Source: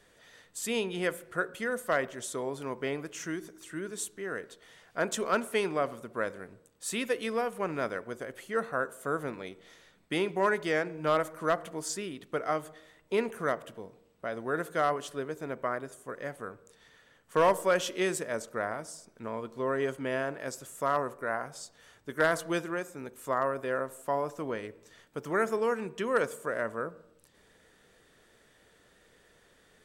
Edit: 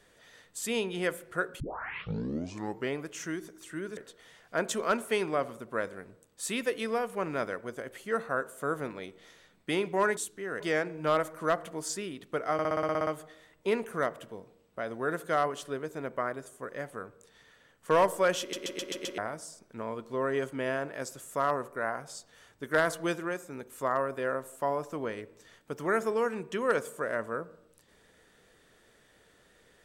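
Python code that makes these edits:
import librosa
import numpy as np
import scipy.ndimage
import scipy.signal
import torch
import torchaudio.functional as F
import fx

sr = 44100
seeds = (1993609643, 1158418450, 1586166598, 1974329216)

y = fx.edit(x, sr, fx.tape_start(start_s=1.6, length_s=1.32),
    fx.move(start_s=3.97, length_s=0.43, to_s=10.6),
    fx.stutter(start_s=12.53, slice_s=0.06, count=10),
    fx.stutter_over(start_s=17.86, slice_s=0.13, count=6), tone=tone)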